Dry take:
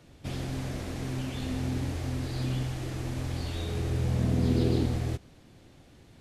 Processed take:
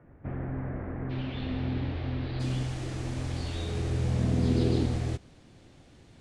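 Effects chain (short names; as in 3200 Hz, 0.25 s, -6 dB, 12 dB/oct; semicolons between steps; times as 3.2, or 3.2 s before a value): steep low-pass 1900 Hz 36 dB/oct, from 1.09 s 4000 Hz, from 2.39 s 10000 Hz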